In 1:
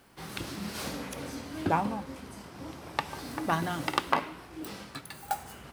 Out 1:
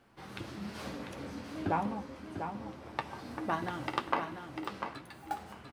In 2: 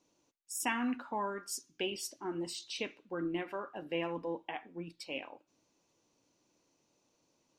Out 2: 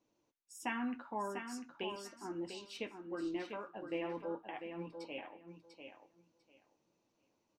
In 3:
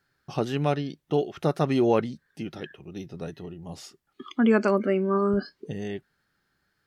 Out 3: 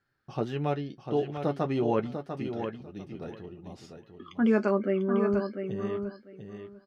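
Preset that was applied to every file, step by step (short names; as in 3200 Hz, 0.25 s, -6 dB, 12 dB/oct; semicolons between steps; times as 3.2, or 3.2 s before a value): LPF 2600 Hz 6 dB/oct; flange 0.31 Hz, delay 8.8 ms, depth 1.1 ms, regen -44%; feedback echo 0.696 s, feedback 17%, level -7.5 dB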